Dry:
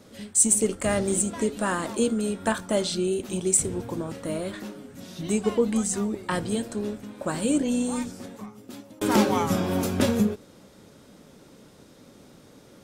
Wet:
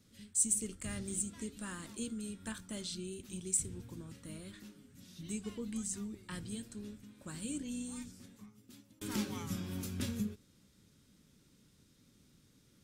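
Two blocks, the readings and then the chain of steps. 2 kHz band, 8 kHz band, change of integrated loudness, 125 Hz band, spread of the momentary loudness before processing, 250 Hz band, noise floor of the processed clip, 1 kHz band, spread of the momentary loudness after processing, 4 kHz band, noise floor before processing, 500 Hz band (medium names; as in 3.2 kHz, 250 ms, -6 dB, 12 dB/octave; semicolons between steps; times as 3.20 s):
-16.5 dB, -11.0 dB, -13.5 dB, -12.0 dB, 16 LU, -15.0 dB, -67 dBFS, -23.0 dB, 17 LU, -12.5 dB, -52 dBFS, -23.0 dB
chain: amplifier tone stack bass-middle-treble 6-0-2; trim +3.5 dB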